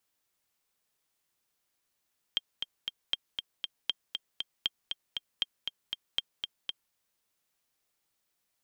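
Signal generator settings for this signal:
click track 236 BPM, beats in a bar 3, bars 6, 3,190 Hz, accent 5.5 dB −14.5 dBFS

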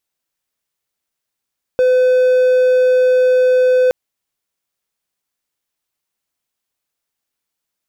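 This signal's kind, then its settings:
tone triangle 507 Hz −7 dBFS 2.12 s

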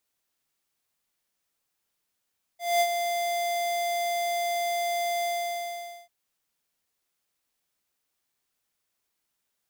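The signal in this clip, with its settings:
note with an ADSR envelope square 693 Hz, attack 216 ms, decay 59 ms, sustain −7 dB, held 2.65 s, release 843 ms −21 dBFS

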